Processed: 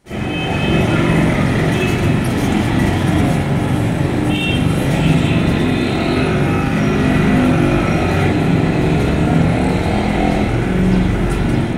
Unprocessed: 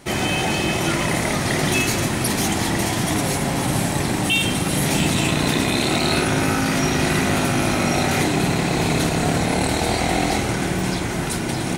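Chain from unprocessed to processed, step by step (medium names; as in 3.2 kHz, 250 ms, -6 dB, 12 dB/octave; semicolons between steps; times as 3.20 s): bass shelf 210 Hz +5.5 dB; level rider; reverberation, pre-delay 43 ms, DRR -11.5 dB; trim -15 dB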